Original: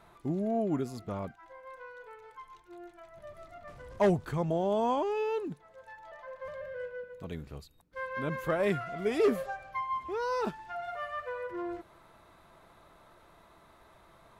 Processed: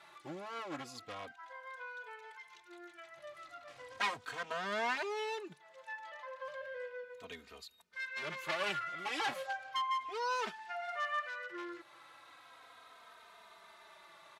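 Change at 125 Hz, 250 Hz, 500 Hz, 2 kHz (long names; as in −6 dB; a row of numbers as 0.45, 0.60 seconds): −20.5, −16.5, −12.0, +2.5 decibels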